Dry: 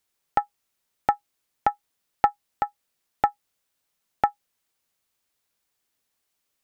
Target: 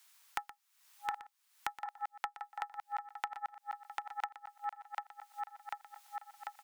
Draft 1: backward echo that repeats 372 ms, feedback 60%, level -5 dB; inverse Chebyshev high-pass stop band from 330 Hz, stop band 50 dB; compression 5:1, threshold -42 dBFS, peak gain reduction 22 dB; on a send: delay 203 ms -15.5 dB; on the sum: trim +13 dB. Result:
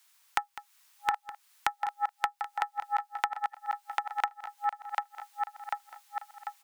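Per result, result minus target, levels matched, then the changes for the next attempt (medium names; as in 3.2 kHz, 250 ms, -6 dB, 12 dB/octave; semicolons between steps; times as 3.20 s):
echo 82 ms late; compression: peak gain reduction -9 dB
change: delay 121 ms -15.5 dB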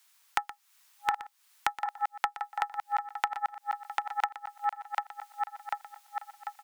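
compression: peak gain reduction -9 dB
change: compression 5:1, threshold -53.5 dBFS, peak gain reduction 31 dB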